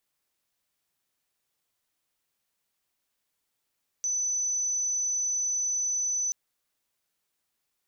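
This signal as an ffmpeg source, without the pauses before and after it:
ffmpeg -f lavfi -i "aevalsrc='0.0531*sin(2*PI*6010*t)':duration=2.28:sample_rate=44100" out.wav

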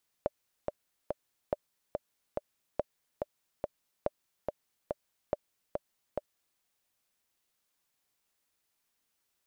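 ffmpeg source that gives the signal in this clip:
ffmpeg -f lavfi -i "aevalsrc='pow(10,(-15.5-3.5*gte(mod(t,3*60/142),60/142))/20)*sin(2*PI*592*mod(t,60/142))*exp(-6.91*mod(t,60/142)/0.03)':duration=6.33:sample_rate=44100" out.wav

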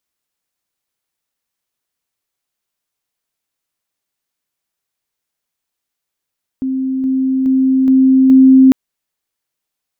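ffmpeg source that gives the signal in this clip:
ffmpeg -f lavfi -i "aevalsrc='pow(10,(-15+3*floor(t/0.42))/20)*sin(2*PI*263*t)':duration=2.1:sample_rate=44100" out.wav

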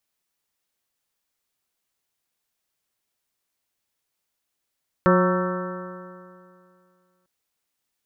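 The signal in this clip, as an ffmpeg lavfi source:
ffmpeg -f lavfi -i "aevalsrc='0.141*pow(10,-3*t/2.33)*sin(2*PI*180.22*t)+0.106*pow(10,-3*t/2.33)*sin(2*PI*361.72*t)+0.126*pow(10,-3*t/2.33)*sin(2*PI*545.8*t)+0.015*pow(10,-3*t/2.33)*sin(2*PI*733.69*t)+0.0473*pow(10,-3*t/2.33)*sin(2*PI*926.61*t)+0.0708*pow(10,-3*t/2.33)*sin(2*PI*1125.69*t)+0.0891*pow(10,-3*t/2.33)*sin(2*PI*1332.03*t)+0.0355*pow(10,-3*t/2.33)*sin(2*PI*1546.64*t)+0.0282*pow(10,-3*t/2.33)*sin(2*PI*1770.48*t)':duration=2.2:sample_rate=44100" out.wav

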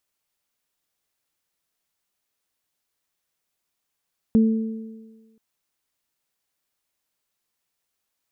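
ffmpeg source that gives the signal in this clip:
ffmpeg -f lavfi -i "aevalsrc='0.266*pow(10,-3*t/1.33)*sin(2*PI*222*t)+0.0596*pow(10,-3*t/1.52)*sin(2*PI*444*t)':duration=1.03:sample_rate=44100" out.wav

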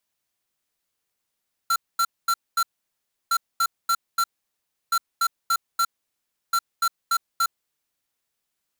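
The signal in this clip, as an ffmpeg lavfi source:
ffmpeg -f lavfi -i "aevalsrc='0.0944*(2*lt(mod(1360*t,1),0.5)-1)*clip(min(mod(mod(t,1.61),0.29),0.06-mod(mod(t,1.61),0.29))/0.005,0,1)*lt(mod(t,1.61),1.16)':duration=6.44:sample_rate=44100" out.wav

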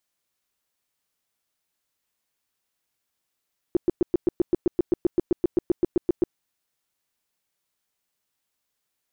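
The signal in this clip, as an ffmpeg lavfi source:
ffmpeg -f lavfi -i "aevalsrc='0.178*sin(2*PI*350*mod(t,0.13))*lt(mod(t,0.13),6/350)':duration=2.6:sample_rate=44100" out.wav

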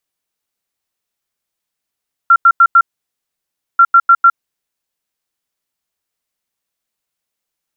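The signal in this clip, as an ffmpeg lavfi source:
ffmpeg -f lavfi -i "aevalsrc='0.708*sin(2*PI*1370*t)*clip(min(mod(mod(t,1.49),0.15),0.06-mod(mod(t,1.49),0.15))/0.005,0,1)*lt(mod(t,1.49),0.6)':duration=2.98:sample_rate=44100" out.wav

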